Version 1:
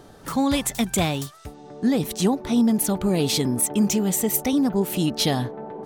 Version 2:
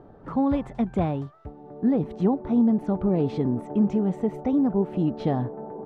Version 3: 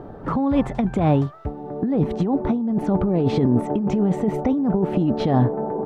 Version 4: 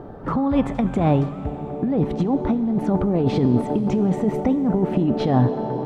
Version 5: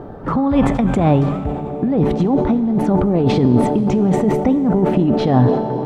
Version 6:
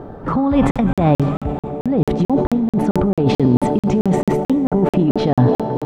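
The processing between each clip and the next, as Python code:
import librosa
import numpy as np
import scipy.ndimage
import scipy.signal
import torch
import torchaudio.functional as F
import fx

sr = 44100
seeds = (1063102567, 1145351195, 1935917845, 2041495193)

y1 = scipy.signal.sosfilt(scipy.signal.butter(2, 1000.0, 'lowpass', fs=sr, output='sos'), x)
y1 = F.gain(torch.from_numpy(y1), -1.0).numpy()
y2 = fx.over_compress(y1, sr, threshold_db=-26.0, ratio=-1.0)
y2 = F.gain(torch.from_numpy(y2), 7.5).numpy()
y3 = fx.rev_plate(y2, sr, seeds[0], rt60_s=4.7, hf_ratio=0.85, predelay_ms=0, drr_db=10.5)
y4 = fx.sustainer(y3, sr, db_per_s=51.0)
y4 = F.gain(torch.from_numpy(y4), 4.0).numpy()
y5 = fx.buffer_crackle(y4, sr, first_s=0.71, period_s=0.22, block=2048, kind='zero')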